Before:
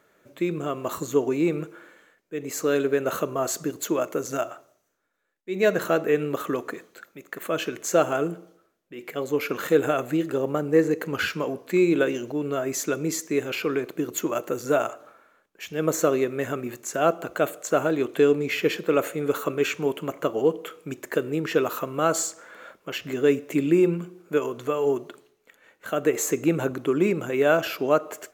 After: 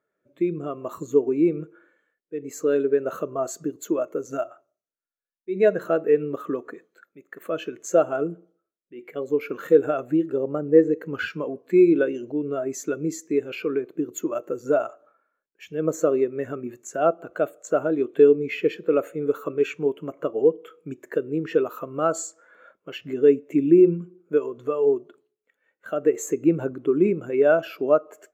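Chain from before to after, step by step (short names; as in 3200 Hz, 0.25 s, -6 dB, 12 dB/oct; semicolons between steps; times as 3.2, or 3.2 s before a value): in parallel at -1 dB: compressor, threshold -32 dBFS, peak gain reduction 17.5 dB; on the sum: spectral expander 1.5:1; gain +2 dB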